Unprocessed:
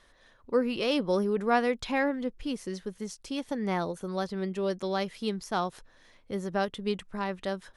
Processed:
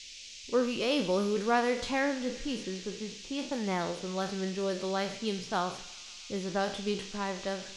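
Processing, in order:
peak hold with a decay on every bin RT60 0.43 s
low-pass that shuts in the quiet parts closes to 350 Hz, open at −26.5 dBFS
noise in a band 2,300–6,700 Hz −45 dBFS
on a send: delay with a high-pass on its return 133 ms, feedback 80%, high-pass 1,900 Hz, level −16.5 dB
on the sum: four-comb reverb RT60 1.1 s, combs from 32 ms, DRR 18.5 dB
level −2.5 dB

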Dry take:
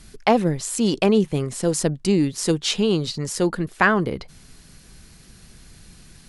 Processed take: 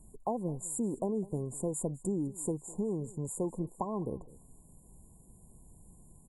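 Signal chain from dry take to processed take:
downward compressor 6 to 1, threshold −20 dBFS, peak gain reduction 9 dB
linear-phase brick-wall band-stop 1,100–6,900 Hz
on a send: single-tap delay 204 ms −21 dB
on the sum: level −9 dB

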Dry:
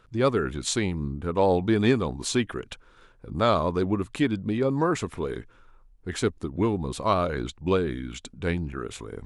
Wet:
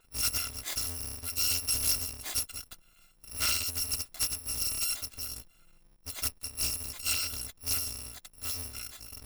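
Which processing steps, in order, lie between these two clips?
samples in bit-reversed order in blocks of 256 samples
parametric band 4,400 Hz +2.5 dB
highs frequency-modulated by the lows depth 0.29 ms
level −6.5 dB

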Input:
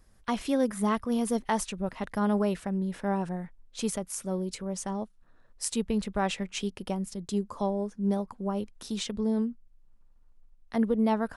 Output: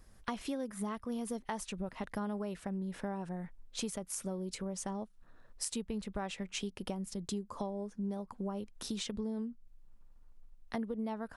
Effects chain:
downward compressor 6 to 1, threshold −37 dBFS, peak gain reduction 15 dB
level +1.5 dB

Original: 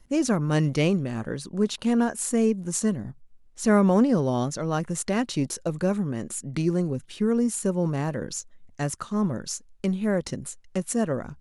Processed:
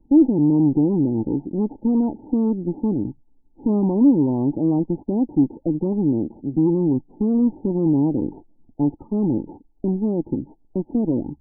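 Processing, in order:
variable-slope delta modulation 32 kbit/s
in parallel at +1 dB: brickwall limiter −21.5 dBFS, peak gain reduction 12 dB
on the sum: harmonic generator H 2 −37 dB, 5 −29 dB, 6 −33 dB, 8 −16 dB, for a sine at −7 dBFS
formant resonators in series u
spectral peaks only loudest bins 32
level +8 dB

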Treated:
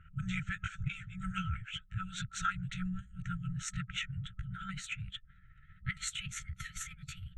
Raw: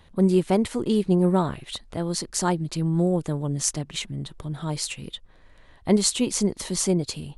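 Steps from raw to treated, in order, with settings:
pitch glide at a constant tempo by +6 semitones starting unshifted
low-shelf EQ 130 Hz −11 dB
harmonic and percussive parts rebalanced harmonic −15 dB
tilt shelving filter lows +6.5 dB, about 1,400 Hz
brick-wall band-stop 190–1,300 Hz
formants moved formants −5 semitones
moving average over 9 samples
one half of a high-frequency compander decoder only
level +7 dB

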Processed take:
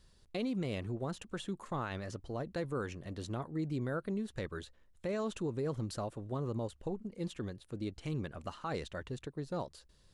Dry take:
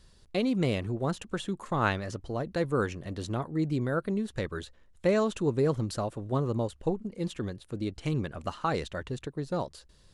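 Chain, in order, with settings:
brickwall limiter −22 dBFS, peak gain reduction 10 dB
level −6 dB

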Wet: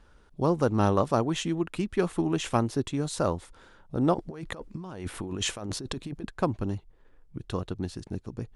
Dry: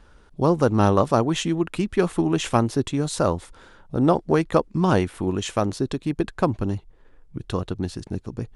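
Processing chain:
0:04.14–0:06.25: compressor whose output falls as the input rises −30 dBFS, ratio −1
level −5.5 dB

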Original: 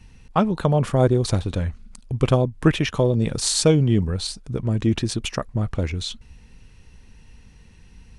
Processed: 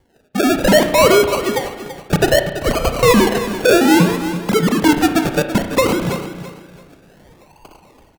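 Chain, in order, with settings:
three sine waves on the formant tracks
0:02.39–0:03.03: Butterworth high-pass 1,100 Hz 48 dB per octave
automatic gain control gain up to 12 dB
sample-and-hold swept by an LFO 34×, swing 60% 0.62 Hz
sine wavefolder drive 6 dB, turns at −1 dBFS
on a send: repeating echo 334 ms, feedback 27%, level −12 dB
on the sum: spring reverb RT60 1.1 s, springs 34 ms, chirp 25 ms, DRR 8 dB
level −6.5 dB

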